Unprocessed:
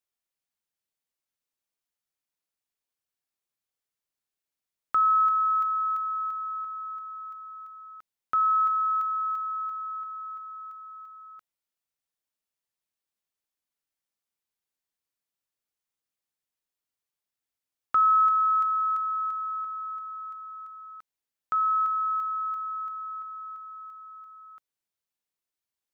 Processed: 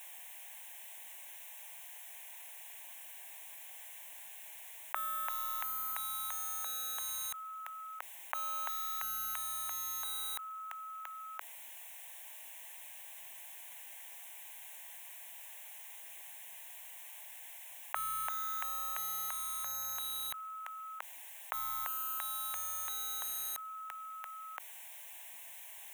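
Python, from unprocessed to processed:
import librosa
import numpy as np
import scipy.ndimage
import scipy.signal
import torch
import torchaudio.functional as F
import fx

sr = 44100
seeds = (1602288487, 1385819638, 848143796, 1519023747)

p1 = scipy.signal.sosfilt(scipy.signal.butter(4, 640.0, 'highpass', fs=sr, output='sos'), x)
p2 = fx.quant_dither(p1, sr, seeds[0], bits=6, dither='none')
p3 = p1 + F.gain(torch.from_numpy(p2), -10.5).numpy()
p4 = fx.fixed_phaser(p3, sr, hz=1300.0, stages=6)
p5 = fx.env_flatten(p4, sr, amount_pct=70)
y = F.gain(torch.from_numpy(p5), 5.0).numpy()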